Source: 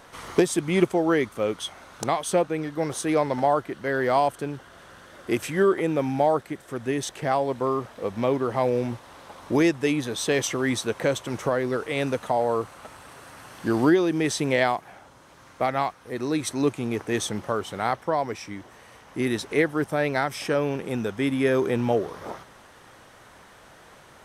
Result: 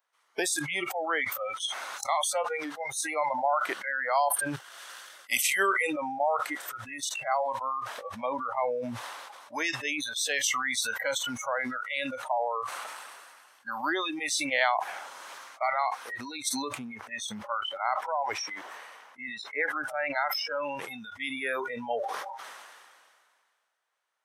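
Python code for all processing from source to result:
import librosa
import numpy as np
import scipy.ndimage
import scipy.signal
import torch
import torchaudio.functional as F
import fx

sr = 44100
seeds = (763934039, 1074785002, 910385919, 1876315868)

y = fx.chain(x, sr, fx.high_shelf(hz=2400.0, db=8.0),
    fx.transient(attack_db=3, sustain_db=-6),
    fx.band_widen(depth_pct=40), at=(4.56, 5.93))
y = fx.chain(y, sr, fx.highpass(hz=85.0, slope=6),
    fx.peak_eq(hz=8800.0, db=-8.0, octaves=2.5), at=(16.75, 20.63))
y = scipy.signal.sosfilt(scipy.signal.butter(2, 870.0, 'highpass', fs=sr, output='sos'), y)
y = fx.noise_reduce_blind(y, sr, reduce_db=29)
y = fx.sustainer(y, sr, db_per_s=29.0)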